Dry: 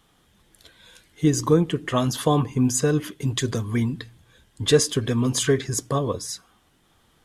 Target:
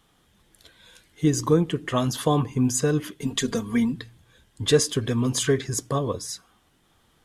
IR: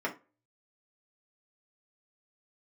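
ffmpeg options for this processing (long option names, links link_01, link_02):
-filter_complex "[0:a]asettb=1/sr,asplit=3[link_01][link_02][link_03];[link_01]atrim=end=3.214[link_04];[link_02]atrim=start=3.21:end=3.92,asetpts=PTS-STARTPTS,afade=type=in:duration=0.004:curve=qsin,afade=type=out:start_time=0.706:duration=0.004:curve=qsin,aecho=1:1:4.3:0.76,atrim=end_sample=31311[link_05];[link_03]atrim=start=3.916[link_06];[link_04][link_05]acrossfade=duration=0.004:curve1=hsin:curve2=qsin[link_07];[link_07][link_06]acrossfade=duration=0.004:curve1=qsin:curve2=hsin,volume=-1.5dB"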